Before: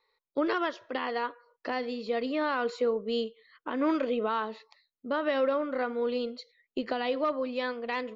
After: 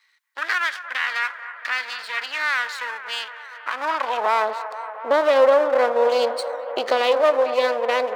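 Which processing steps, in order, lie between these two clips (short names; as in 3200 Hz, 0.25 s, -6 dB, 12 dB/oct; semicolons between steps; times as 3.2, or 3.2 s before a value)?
3.71–4.26 Chebyshev high-pass 190 Hz, order 5; 6.11–7.13 high shelf 2800 Hz +6.5 dB; in parallel at -2.5 dB: limiter -27 dBFS, peak gain reduction 10 dB; on the sum: half-wave rectifier; high-pass sweep 1700 Hz -> 530 Hz, 3.39–4.64; on a send: band-limited delay 0.234 s, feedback 79%, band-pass 950 Hz, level -12 dB; on the sum: gain +8 dB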